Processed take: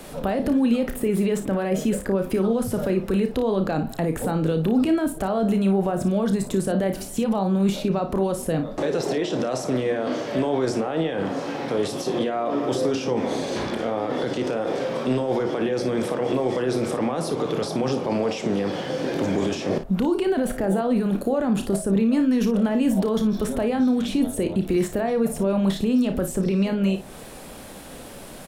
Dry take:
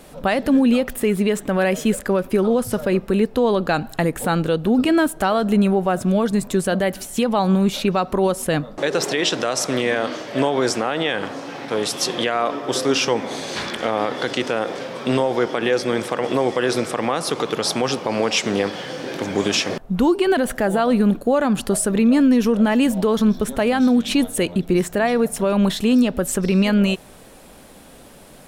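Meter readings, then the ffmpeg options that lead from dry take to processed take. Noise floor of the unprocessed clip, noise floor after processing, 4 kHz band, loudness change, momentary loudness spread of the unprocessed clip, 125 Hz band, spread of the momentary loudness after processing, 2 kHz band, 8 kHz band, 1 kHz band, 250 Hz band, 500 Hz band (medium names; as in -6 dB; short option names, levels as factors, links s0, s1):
-44 dBFS, -39 dBFS, -10.0 dB, -3.5 dB, 6 LU, -1.5 dB, 5 LU, -9.5 dB, -8.5 dB, -6.0 dB, -3.0 dB, -3.0 dB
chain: -filter_complex "[0:a]alimiter=limit=0.158:level=0:latency=1:release=15,acrossover=split=190|790[s0][s1][s2];[s0]acompressor=threshold=0.0224:ratio=4[s3];[s1]acompressor=threshold=0.0562:ratio=4[s4];[s2]acompressor=threshold=0.00891:ratio=4[s5];[s3][s4][s5]amix=inputs=3:normalize=0,asplit=2[s6][s7];[s7]aecho=0:1:31|56:0.335|0.282[s8];[s6][s8]amix=inputs=2:normalize=0,volume=1.58"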